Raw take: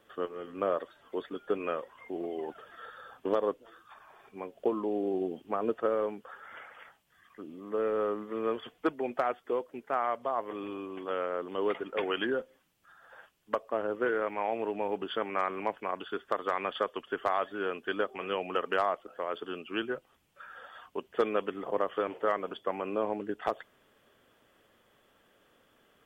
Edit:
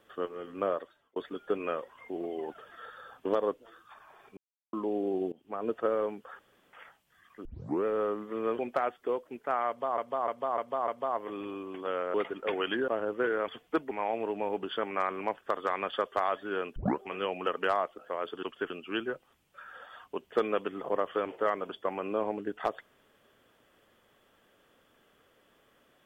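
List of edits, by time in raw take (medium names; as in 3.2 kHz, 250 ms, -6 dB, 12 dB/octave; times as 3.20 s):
0.65–1.16 s: fade out
4.37–4.73 s: mute
5.32–5.78 s: fade in, from -19.5 dB
6.39–6.73 s: room tone
7.45 s: tape start 0.40 s
8.59–9.02 s: move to 14.30 s
10.11–10.41 s: loop, 5 plays
11.37–11.64 s: delete
12.38–13.70 s: delete
15.81–16.24 s: delete
16.94–17.21 s: move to 19.52 s
17.85 s: tape start 0.25 s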